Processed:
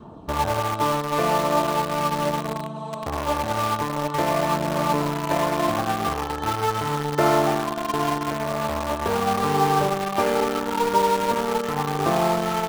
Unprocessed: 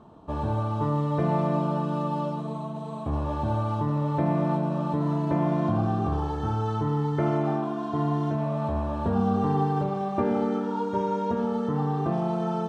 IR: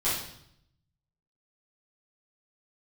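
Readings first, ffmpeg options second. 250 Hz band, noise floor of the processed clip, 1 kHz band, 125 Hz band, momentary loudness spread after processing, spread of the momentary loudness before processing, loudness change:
-1.0 dB, -32 dBFS, +7.5 dB, -4.0 dB, 6 LU, 5 LU, +3.5 dB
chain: -filter_complex "[0:a]acrossover=split=470|3000[s0][s1][s2];[s0]acompressor=threshold=0.00562:ratio=3[s3];[s3][s1][s2]amix=inputs=3:normalize=0,aphaser=in_gain=1:out_gain=1:delay=4.2:decay=0.28:speed=0.41:type=sinusoidal,adynamicequalizer=threshold=0.00891:dfrequency=750:dqfactor=2.4:tfrequency=750:tqfactor=2.4:attack=5:release=100:ratio=0.375:range=2:mode=cutabove:tftype=bell,asplit=2[s4][s5];[s5]acrusher=bits=4:mix=0:aa=0.000001,volume=0.562[s6];[s4][s6]amix=inputs=2:normalize=0,volume=2.11"

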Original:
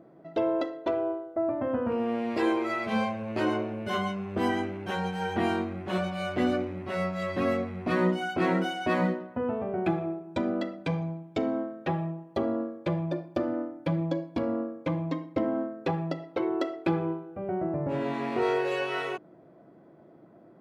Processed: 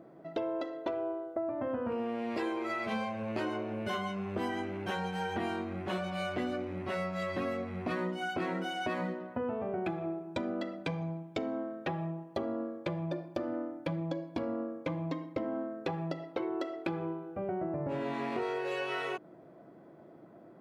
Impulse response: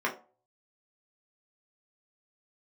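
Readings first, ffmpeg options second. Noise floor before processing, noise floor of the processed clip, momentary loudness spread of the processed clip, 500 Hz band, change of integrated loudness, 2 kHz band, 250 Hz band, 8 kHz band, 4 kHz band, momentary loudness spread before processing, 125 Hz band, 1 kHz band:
-54 dBFS, -55 dBFS, 3 LU, -5.5 dB, -6.0 dB, -4.5 dB, -6.5 dB, no reading, -4.0 dB, 5 LU, -6.5 dB, -5.0 dB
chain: -af "lowshelf=f=370:g=-3,acompressor=threshold=0.0224:ratio=6,volume=1.19"

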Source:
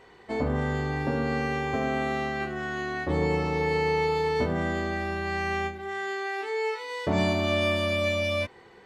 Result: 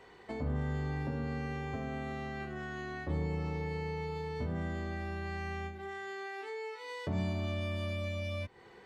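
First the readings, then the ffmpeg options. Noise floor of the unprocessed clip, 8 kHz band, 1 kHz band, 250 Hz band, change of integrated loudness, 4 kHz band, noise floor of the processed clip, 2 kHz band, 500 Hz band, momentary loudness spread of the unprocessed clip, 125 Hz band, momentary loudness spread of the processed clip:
-53 dBFS, -13.0 dB, -12.5 dB, -9.0 dB, -10.0 dB, -13.5 dB, -56 dBFS, -12.5 dB, -13.0 dB, 7 LU, -4.5 dB, 6 LU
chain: -filter_complex "[0:a]acrossover=split=180[s0][s1];[s1]acompressor=threshold=0.0126:ratio=4[s2];[s0][s2]amix=inputs=2:normalize=0,volume=0.708"

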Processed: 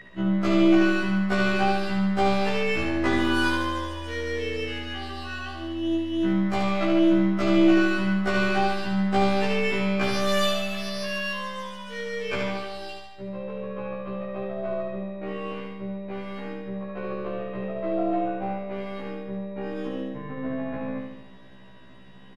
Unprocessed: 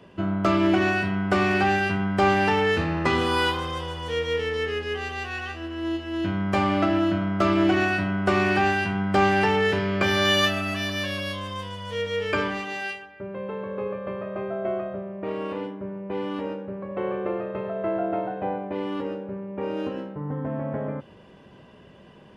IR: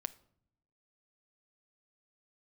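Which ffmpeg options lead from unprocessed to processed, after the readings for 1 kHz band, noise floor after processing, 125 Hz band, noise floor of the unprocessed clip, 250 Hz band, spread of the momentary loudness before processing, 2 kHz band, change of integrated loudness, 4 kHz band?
-3.5 dB, -46 dBFS, -2.0 dB, -49 dBFS, +2.0 dB, 12 LU, -2.5 dB, -1.0 dB, -3.0 dB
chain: -filter_complex "[0:a]equalizer=f=450:t=o:w=0.86:g=-5,aeval=exprs='val(0)+0.0282*sin(2*PI*1900*n/s)':c=same,aeval=exprs='0.355*(cos(1*acos(clip(val(0)/0.355,-1,1)))-cos(1*PI/2))+0.02*(cos(6*acos(clip(val(0)/0.355,-1,1)))-cos(6*PI/2))':c=same,asplit=2[s0][s1];[s1]aecho=0:1:73|146|219|292|365|438|511|584:0.596|0.334|0.187|0.105|0.0586|0.0328|0.0184|0.0103[s2];[s0][s2]amix=inputs=2:normalize=0,afftfilt=real='re*1.73*eq(mod(b,3),0)':imag='im*1.73*eq(mod(b,3),0)':win_size=2048:overlap=0.75"

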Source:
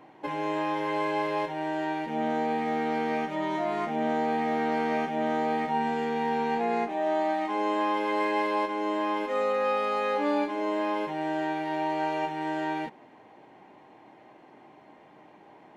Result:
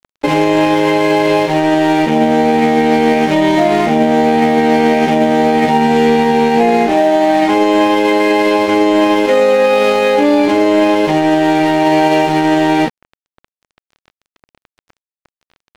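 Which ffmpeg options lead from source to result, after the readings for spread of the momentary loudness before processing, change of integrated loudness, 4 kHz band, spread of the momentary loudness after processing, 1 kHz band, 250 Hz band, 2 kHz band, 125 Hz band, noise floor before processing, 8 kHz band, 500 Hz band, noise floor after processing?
4 LU, +17.0 dB, +19.5 dB, 1 LU, +14.0 dB, +19.0 dB, +16.0 dB, +20.5 dB, -54 dBFS, no reading, +18.0 dB, under -85 dBFS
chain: -af "equalizer=f=1200:w=1.7:g=-13,aeval=exprs='sgn(val(0))*max(abs(val(0))-0.00473,0)':c=same,alimiter=level_in=28.2:limit=0.891:release=50:level=0:latency=1,volume=0.794"

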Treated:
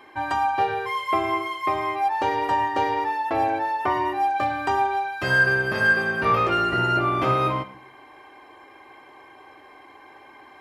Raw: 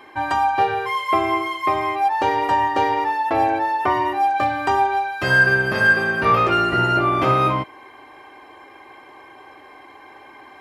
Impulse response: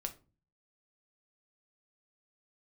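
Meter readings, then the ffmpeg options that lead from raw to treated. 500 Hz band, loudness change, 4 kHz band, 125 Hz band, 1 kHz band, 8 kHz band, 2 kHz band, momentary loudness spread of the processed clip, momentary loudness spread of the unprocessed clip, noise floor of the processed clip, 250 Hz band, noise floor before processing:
-3.5 dB, -4.0 dB, -3.5 dB, -4.0 dB, -4.0 dB, no reading, -4.0 dB, 6 LU, 6 LU, -49 dBFS, -4.0 dB, -45 dBFS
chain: -filter_complex "[0:a]asplit=2[s0][s1];[1:a]atrim=start_sample=2205,adelay=105[s2];[s1][s2]afir=irnorm=-1:irlink=0,volume=0.178[s3];[s0][s3]amix=inputs=2:normalize=0,volume=0.631"

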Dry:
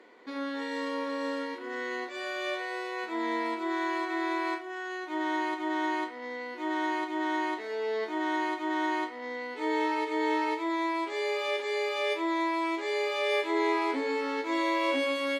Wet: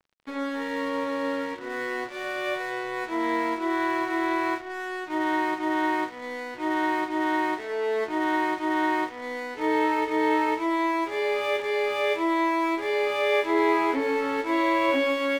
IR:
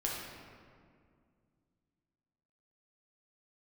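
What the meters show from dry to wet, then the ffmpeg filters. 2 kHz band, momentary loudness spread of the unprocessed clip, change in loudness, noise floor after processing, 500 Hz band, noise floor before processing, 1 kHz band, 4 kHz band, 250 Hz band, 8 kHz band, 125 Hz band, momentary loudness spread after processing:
+4.5 dB, 8 LU, +4.5 dB, -39 dBFS, +5.0 dB, -41 dBFS, +5.0 dB, +1.0 dB, +5.0 dB, +2.5 dB, no reading, 9 LU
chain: -af "lowpass=2900,aeval=exprs='sgn(val(0))*max(abs(val(0))-0.00398,0)':c=same,volume=2"

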